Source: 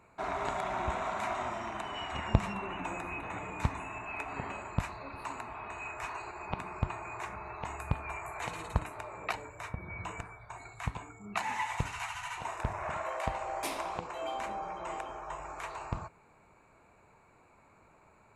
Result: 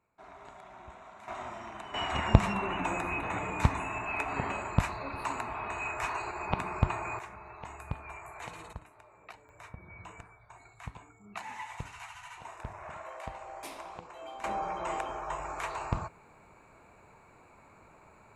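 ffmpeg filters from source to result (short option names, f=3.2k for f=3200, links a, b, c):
-af "asetnsamples=n=441:p=0,asendcmd='1.28 volume volume -5dB;1.94 volume volume 5.5dB;7.19 volume volume -5dB;8.73 volume volume -14.5dB;9.49 volume volume -7.5dB;14.44 volume volume 4.5dB',volume=-16dB"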